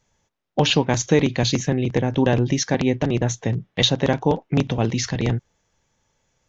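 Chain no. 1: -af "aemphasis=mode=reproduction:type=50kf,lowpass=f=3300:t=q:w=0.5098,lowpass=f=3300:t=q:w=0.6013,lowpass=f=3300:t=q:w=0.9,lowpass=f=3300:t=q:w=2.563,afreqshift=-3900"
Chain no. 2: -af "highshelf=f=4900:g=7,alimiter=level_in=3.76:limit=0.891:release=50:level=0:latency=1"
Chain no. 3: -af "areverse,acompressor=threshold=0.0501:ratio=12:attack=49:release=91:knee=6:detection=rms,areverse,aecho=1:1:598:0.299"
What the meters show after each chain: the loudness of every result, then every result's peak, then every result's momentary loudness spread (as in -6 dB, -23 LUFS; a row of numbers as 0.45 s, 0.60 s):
-18.0 LUFS, -12.5 LUFS, -28.0 LUFS; -4.0 dBFS, -1.0 dBFS, -12.5 dBFS; 6 LU, 4 LU, 12 LU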